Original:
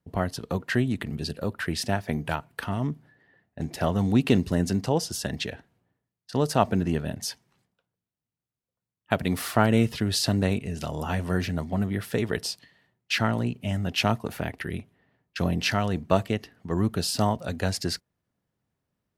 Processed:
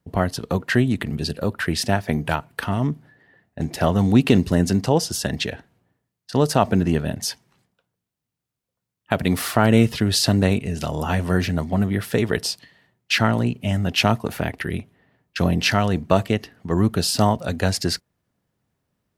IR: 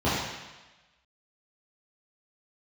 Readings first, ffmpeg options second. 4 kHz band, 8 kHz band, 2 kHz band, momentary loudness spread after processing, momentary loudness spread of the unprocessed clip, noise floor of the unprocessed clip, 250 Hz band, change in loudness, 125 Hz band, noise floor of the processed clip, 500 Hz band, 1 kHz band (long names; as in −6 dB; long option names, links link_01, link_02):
+6.0 dB, +6.0 dB, +5.5 dB, 10 LU, 10 LU, below −85 dBFS, +6.0 dB, +5.5 dB, +6.0 dB, −83 dBFS, +5.5 dB, +5.0 dB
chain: -af "alimiter=level_in=7dB:limit=-1dB:release=50:level=0:latency=1,volume=-1dB"